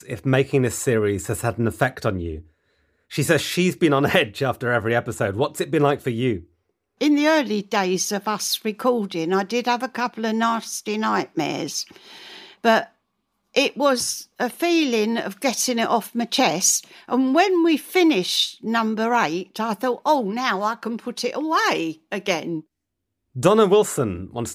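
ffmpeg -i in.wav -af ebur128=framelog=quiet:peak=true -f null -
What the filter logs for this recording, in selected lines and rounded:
Integrated loudness:
  I:         -21.4 LUFS
  Threshold: -31.7 LUFS
Loudness range:
  LRA:         4.1 LU
  Threshold: -41.9 LUFS
  LRA low:   -23.8 LUFS
  LRA high:  -19.7 LUFS
True peak:
  Peak:       -2.4 dBFS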